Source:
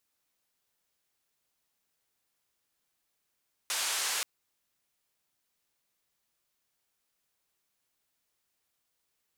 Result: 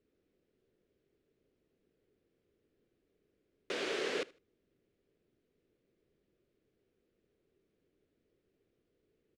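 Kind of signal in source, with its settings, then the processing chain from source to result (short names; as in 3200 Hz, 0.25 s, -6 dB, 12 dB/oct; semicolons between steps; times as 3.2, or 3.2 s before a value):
noise band 710–9200 Hz, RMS -32 dBFS 0.53 s
LPF 2500 Hz 12 dB/oct; resonant low shelf 610 Hz +13.5 dB, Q 3; feedback echo 77 ms, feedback 25%, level -23 dB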